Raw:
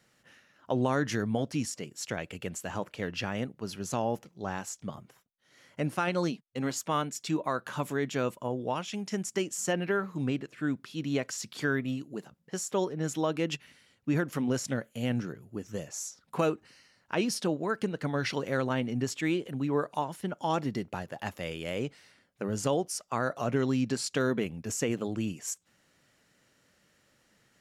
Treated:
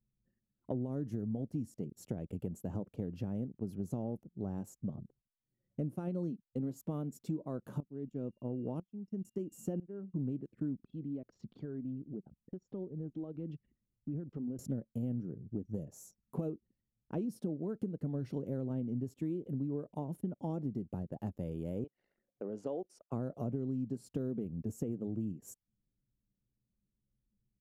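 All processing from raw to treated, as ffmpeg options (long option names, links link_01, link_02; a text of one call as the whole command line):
ffmpeg -i in.wav -filter_complex "[0:a]asettb=1/sr,asplit=3[link_01][link_02][link_03];[link_01]atrim=end=7.804[link_04];[link_02]atrim=start=7.8:end=10.14,asetpts=PTS-STARTPTS,afade=type=in:duration=0.004:curve=qsin,afade=type=out:start_time=2.336:duration=0.004:curve=qsin,equalizer=frequency=270:width=0.96:gain=2.5,aeval=exprs='val(0)+0.00355*sin(2*PI*2800*n/s)':channel_layout=same,aeval=exprs='val(0)*pow(10,-19*if(lt(mod(-1*n/s,1),2*abs(-1)/1000),1-mod(-1*n/s,1)/(2*abs(-1)/1000),(mod(-1*n/s,1)-2*abs(-1)/1000)/(1-2*abs(-1)/1000))/20)':channel_layout=same[link_05];[link_03]atrim=start=10.136[link_06];[link_04][link_05]acrossfade=duration=0.004:curve1=hsin:curve2=qsin[link_07];[link_07][link_06]acrossfade=duration=0.004:curve1=qsin:curve2=hsin,asettb=1/sr,asplit=3[link_08][link_09][link_10];[link_08]atrim=end=10.834[link_11];[link_09]atrim=start=10.83:end=14.59,asetpts=PTS-STARTPTS,afade=type=in:duration=0.004:curve=qsin,afade=type=out:start_time=3.756:duration=0.004:curve=qsin,lowpass=frequency=4500:width=0.5412,lowpass=frequency=4500:width=1.3066,aphaser=in_gain=1:out_gain=1:delay=3.8:decay=0.34:speed=1.5:type=triangular,acompressor=threshold=-47dB:ratio=2.5:attack=3.2:release=140:knee=1:detection=peak[link_12];[link_10]atrim=start=14.586[link_13];[link_11][link_12]acrossfade=duration=0.004:curve1=hsin:curve2=qsin[link_14];[link_14][link_13]acrossfade=duration=0.004:curve1=qsin:curve2=hsin,asettb=1/sr,asplit=3[link_15][link_16][link_17];[link_15]atrim=end=21.844[link_18];[link_16]atrim=start=21.84:end=23.12,asetpts=PTS-STARTPTS,afade=type=in:duration=0.004:curve=qsin,afade=type=out:start_time=1.276:duration=0.004:curve=qsin,acompressor=mode=upward:threshold=-41dB:ratio=2.5:attack=3.2:release=140:knee=2.83:detection=peak,highpass=510,lowpass=4000[link_19];[link_17]atrim=start=23.116[link_20];[link_18][link_19]acrossfade=duration=0.004:curve1=hsin:curve2=qsin[link_21];[link_21][link_20]acrossfade=duration=0.004:curve1=qsin:curve2=hsin,anlmdn=0.00631,firequalizer=gain_entry='entry(220,0);entry(980,-21);entry(1800,-30);entry(5000,-28);entry(13000,-11)':delay=0.05:min_phase=1,acompressor=threshold=-40dB:ratio=6,volume=6dB" out.wav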